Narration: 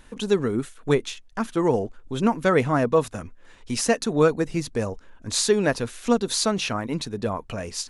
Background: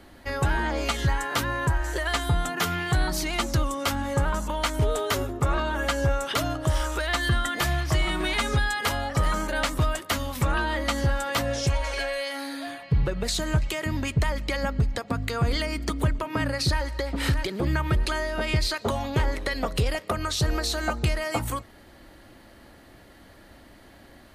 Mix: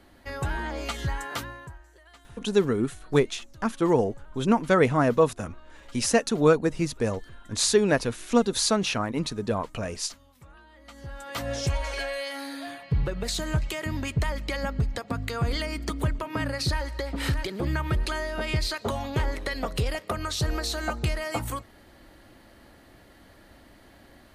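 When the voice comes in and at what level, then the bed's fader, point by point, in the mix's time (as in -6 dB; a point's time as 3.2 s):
2.25 s, -0.5 dB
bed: 1.34 s -5.5 dB
1.9 s -27 dB
10.73 s -27 dB
11.53 s -2.5 dB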